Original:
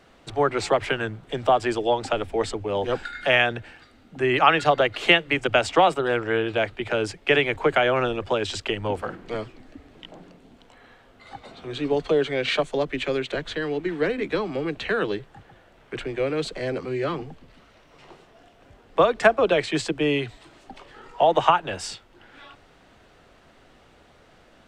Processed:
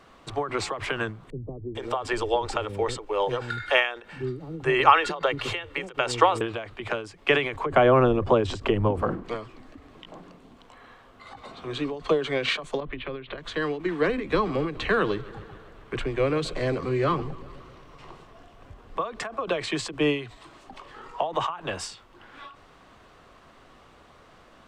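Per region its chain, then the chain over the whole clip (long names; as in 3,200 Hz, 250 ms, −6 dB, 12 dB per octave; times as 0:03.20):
0:01.30–0:06.41: comb filter 2.2 ms, depth 33% + multiband delay without the direct sound lows, highs 450 ms, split 310 Hz
0:07.66–0:09.24: tilt shelving filter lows +8.5 dB, about 880 Hz + upward compression, threshold −20 dBFS
0:12.80–0:13.38: Butterworth low-pass 3,800 Hz + low-shelf EQ 130 Hz +12 dB + downward compressor, threshold −30 dBFS
0:14.09–0:19.01: low-shelf EQ 120 Hz +11 dB + feedback echo with a swinging delay time 132 ms, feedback 70%, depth 106 cents, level −20 dB
whole clip: parametric band 1,100 Hz +10.5 dB 0.28 octaves; every ending faded ahead of time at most 120 dB per second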